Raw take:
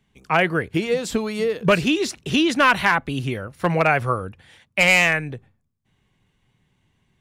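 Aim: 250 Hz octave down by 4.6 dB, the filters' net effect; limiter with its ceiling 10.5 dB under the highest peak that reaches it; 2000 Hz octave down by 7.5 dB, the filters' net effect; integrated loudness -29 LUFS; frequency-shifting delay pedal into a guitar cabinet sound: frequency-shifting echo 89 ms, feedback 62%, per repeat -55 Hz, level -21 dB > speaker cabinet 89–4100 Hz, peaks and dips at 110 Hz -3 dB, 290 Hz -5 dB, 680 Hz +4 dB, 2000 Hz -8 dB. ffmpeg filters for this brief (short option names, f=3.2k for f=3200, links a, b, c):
-filter_complex "[0:a]equalizer=f=250:t=o:g=-3.5,equalizer=f=2k:t=o:g=-6.5,alimiter=limit=-19dB:level=0:latency=1,asplit=6[a][b][c][d][e][f];[b]adelay=89,afreqshift=-55,volume=-21dB[g];[c]adelay=178,afreqshift=-110,volume=-25.2dB[h];[d]adelay=267,afreqshift=-165,volume=-29.3dB[i];[e]adelay=356,afreqshift=-220,volume=-33.5dB[j];[f]adelay=445,afreqshift=-275,volume=-37.6dB[k];[a][g][h][i][j][k]amix=inputs=6:normalize=0,highpass=89,equalizer=f=110:t=q:w=4:g=-3,equalizer=f=290:t=q:w=4:g=-5,equalizer=f=680:t=q:w=4:g=4,equalizer=f=2k:t=q:w=4:g=-8,lowpass=f=4.1k:w=0.5412,lowpass=f=4.1k:w=1.3066,volume=0.5dB"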